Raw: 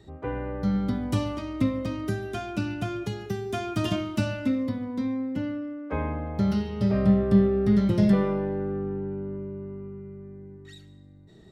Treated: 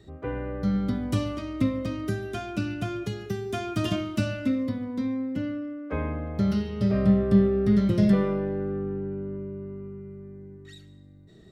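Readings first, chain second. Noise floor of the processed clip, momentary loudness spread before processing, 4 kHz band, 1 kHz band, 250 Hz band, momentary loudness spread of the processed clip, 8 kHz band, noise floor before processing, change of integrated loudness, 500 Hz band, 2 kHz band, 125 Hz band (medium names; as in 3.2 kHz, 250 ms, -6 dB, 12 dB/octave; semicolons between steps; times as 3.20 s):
-50 dBFS, 16 LU, 0.0 dB, -2.0 dB, 0.0 dB, 16 LU, no reading, -50 dBFS, 0.0 dB, 0.0 dB, 0.0 dB, 0.0 dB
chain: peaking EQ 870 Hz -10 dB 0.22 oct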